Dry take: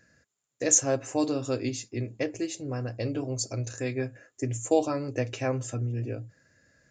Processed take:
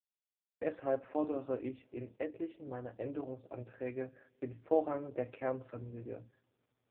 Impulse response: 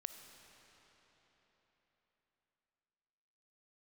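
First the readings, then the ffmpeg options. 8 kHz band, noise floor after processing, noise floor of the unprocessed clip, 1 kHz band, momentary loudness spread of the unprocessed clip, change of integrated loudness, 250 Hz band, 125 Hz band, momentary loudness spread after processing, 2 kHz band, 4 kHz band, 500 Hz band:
below −40 dB, below −85 dBFS, −81 dBFS, −6.5 dB, 12 LU, −10.0 dB, −9.5 dB, −17.5 dB, 14 LU, −12.0 dB, below −25 dB, −6.5 dB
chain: -filter_complex "[0:a]lowpass=1700,agate=range=-52dB:threshold=-55dB:ratio=16:detection=peak,highpass=frequency=510:poles=1,asplit=2[link_01][link_02];[1:a]atrim=start_sample=2205,asetrate=70560,aresample=44100,highshelf=frequency=5800:gain=4[link_03];[link_02][link_03]afir=irnorm=-1:irlink=0,volume=-12dB[link_04];[link_01][link_04]amix=inputs=2:normalize=0,volume=-3.5dB" -ar 8000 -c:a libopencore_amrnb -b:a 4750

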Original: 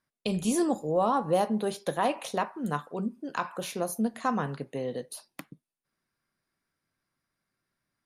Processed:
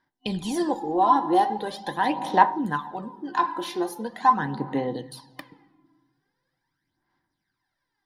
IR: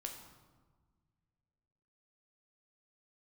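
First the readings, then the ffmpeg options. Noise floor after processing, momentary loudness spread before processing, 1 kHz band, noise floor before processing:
−81 dBFS, 9 LU, +9.5 dB, below −85 dBFS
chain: -filter_complex "[0:a]asplit=2[link_01][link_02];[1:a]atrim=start_sample=2205,lowpass=4700[link_03];[link_02][link_03]afir=irnorm=-1:irlink=0,volume=-1.5dB[link_04];[link_01][link_04]amix=inputs=2:normalize=0,aphaser=in_gain=1:out_gain=1:delay=3:decay=0.61:speed=0.42:type=sinusoidal,superequalizer=6b=2.51:9b=3.98:11b=2.51:13b=2.51:14b=2.24,volume=-7dB"

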